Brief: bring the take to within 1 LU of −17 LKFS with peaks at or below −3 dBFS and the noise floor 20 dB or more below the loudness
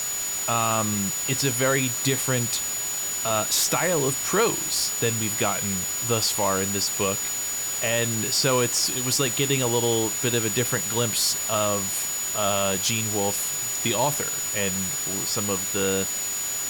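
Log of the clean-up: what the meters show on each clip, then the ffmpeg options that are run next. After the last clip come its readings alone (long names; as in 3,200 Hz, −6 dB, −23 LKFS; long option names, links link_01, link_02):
interfering tone 6,900 Hz; level of the tone −27 dBFS; background noise floor −29 dBFS; target noise floor −43 dBFS; integrated loudness −22.5 LKFS; sample peak −10.0 dBFS; target loudness −17.0 LKFS
→ -af "bandreject=frequency=6900:width=30"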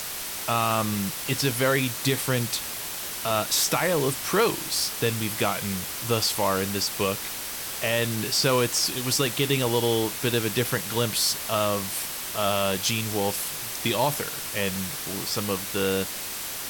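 interfering tone none found; background noise floor −34 dBFS; target noise floor −45 dBFS
→ -af "afftdn=noise_reduction=11:noise_floor=-34"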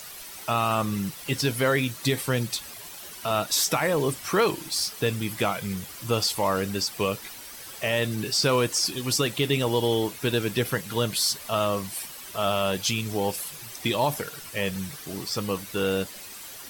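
background noise floor −42 dBFS; target noise floor −46 dBFS
→ -af "afftdn=noise_reduction=6:noise_floor=-42"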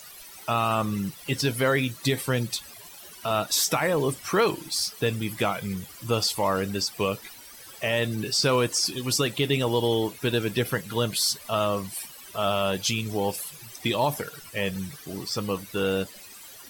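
background noise floor −46 dBFS; target noise floor −47 dBFS
→ -af "afftdn=noise_reduction=6:noise_floor=-46"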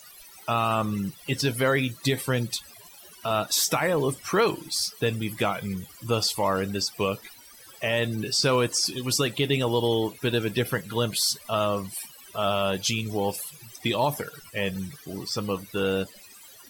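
background noise floor −49 dBFS; integrated loudness −26.5 LKFS; sample peak −11.5 dBFS; target loudness −17.0 LKFS
→ -af "volume=9.5dB,alimiter=limit=-3dB:level=0:latency=1"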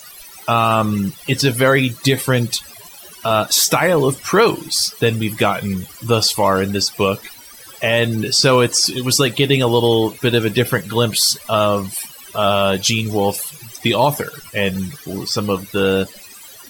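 integrated loudness −17.0 LKFS; sample peak −3.0 dBFS; background noise floor −40 dBFS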